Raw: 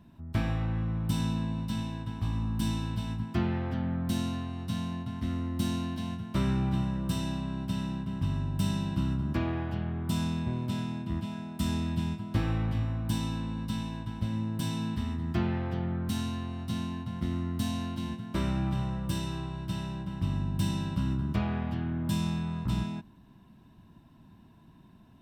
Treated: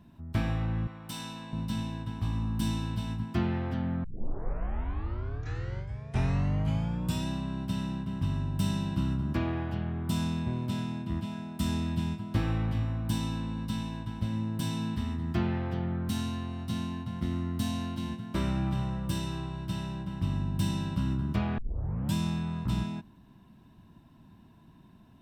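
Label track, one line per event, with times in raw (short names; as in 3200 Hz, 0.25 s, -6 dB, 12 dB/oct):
0.870000	1.530000	HPF 780 Hz 6 dB/oct
4.040000	4.040000	tape start 3.25 s
21.580000	21.580000	tape start 0.55 s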